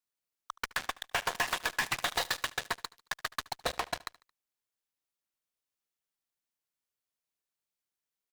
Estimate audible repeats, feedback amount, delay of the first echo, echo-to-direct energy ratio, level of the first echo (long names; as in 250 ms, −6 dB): 3, 50%, 74 ms, −21.0 dB, −22.0 dB